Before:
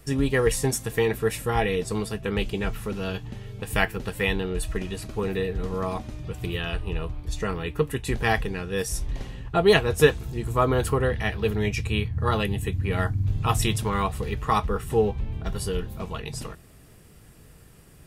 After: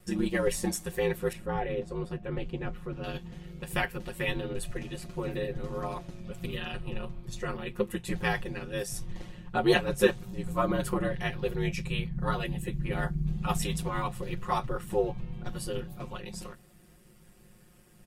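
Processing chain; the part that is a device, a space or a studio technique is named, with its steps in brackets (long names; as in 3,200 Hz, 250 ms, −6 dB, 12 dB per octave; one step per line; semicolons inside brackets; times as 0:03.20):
ring-modulated robot voice (ring modulation 54 Hz; comb filter 5.6 ms, depth 93%)
0:01.33–0:03.04: low-pass filter 1,300 Hz 6 dB per octave
level −6 dB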